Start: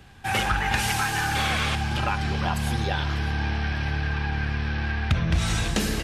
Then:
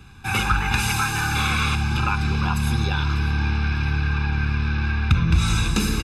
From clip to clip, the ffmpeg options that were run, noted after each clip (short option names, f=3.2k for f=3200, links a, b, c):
-af "aecho=1:1:0.8:0.84"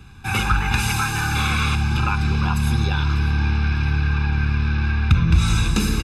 -af "lowshelf=f=220:g=3"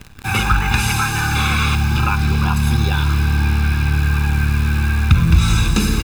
-af "acrusher=bits=7:dc=4:mix=0:aa=0.000001,volume=3.5dB"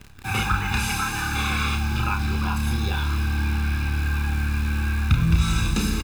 -filter_complex "[0:a]asplit=2[a][b];[b]adelay=31,volume=-5dB[c];[a][c]amix=inputs=2:normalize=0,volume=-7.5dB"